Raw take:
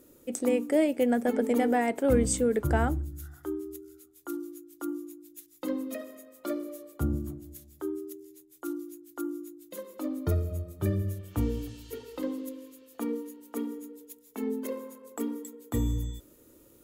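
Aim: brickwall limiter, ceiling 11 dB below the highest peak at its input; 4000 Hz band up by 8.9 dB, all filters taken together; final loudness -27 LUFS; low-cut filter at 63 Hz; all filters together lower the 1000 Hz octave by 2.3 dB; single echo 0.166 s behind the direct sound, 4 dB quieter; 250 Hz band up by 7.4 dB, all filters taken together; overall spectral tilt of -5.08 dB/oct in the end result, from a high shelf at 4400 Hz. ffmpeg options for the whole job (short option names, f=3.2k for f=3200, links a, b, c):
-af "highpass=63,equalizer=f=250:t=o:g=8.5,equalizer=f=1k:t=o:g=-5.5,equalizer=f=4k:t=o:g=8,highshelf=f=4.4k:g=7.5,alimiter=limit=-16dB:level=0:latency=1,aecho=1:1:166:0.631,volume=1dB"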